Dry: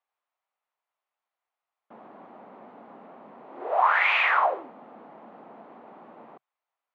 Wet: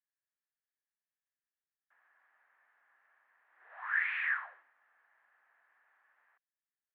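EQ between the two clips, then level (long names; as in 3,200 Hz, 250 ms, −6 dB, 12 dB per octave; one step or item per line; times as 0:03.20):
four-pole ladder band-pass 1,800 Hz, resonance 80%
−6.5 dB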